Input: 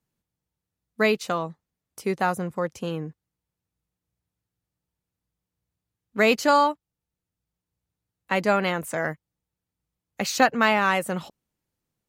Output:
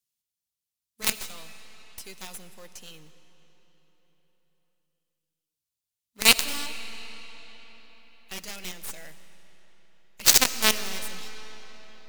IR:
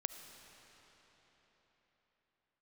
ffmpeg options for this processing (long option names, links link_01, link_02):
-filter_complex "[0:a]aexciter=amount=8.7:drive=7:freq=2300,acrusher=bits=2:mode=log:mix=0:aa=0.000001,aeval=exprs='1.58*(cos(1*acos(clip(val(0)/1.58,-1,1)))-cos(1*PI/2))+0.631*(cos(3*acos(clip(val(0)/1.58,-1,1)))-cos(3*PI/2))+0.0447*(cos(6*acos(clip(val(0)/1.58,-1,1)))-cos(6*PI/2))':channel_layout=same,asplit=2[link_01][link_02];[1:a]atrim=start_sample=2205,asetrate=43659,aresample=44100[link_03];[link_02][link_03]afir=irnorm=-1:irlink=0,volume=4.5dB[link_04];[link_01][link_04]amix=inputs=2:normalize=0,volume=-15dB"